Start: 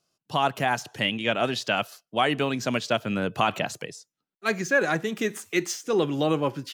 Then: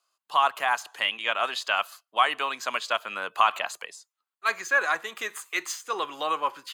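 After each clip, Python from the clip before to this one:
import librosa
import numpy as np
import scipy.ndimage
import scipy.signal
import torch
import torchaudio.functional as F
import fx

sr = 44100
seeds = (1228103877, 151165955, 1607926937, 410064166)

y = scipy.signal.sosfilt(scipy.signal.butter(2, 870.0, 'highpass', fs=sr, output='sos'), x)
y = fx.peak_eq(y, sr, hz=1100.0, db=9.5, octaves=0.53)
y = fx.notch(y, sr, hz=5600.0, q=5.9)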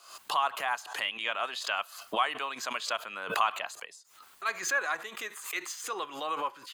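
y = fx.pre_swell(x, sr, db_per_s=91.0)
y = F.gain(torch.from_numpy(y), -6.5).numpy()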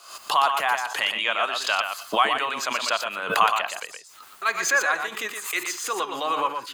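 y = x + 10.0 ** (-6.5 / 20.0) * np.pad(x, (int(119 * sr / 1000.0), 0))[:len(x)]
y = F.gain(torch.from_numpy(y), 7.5).numpy()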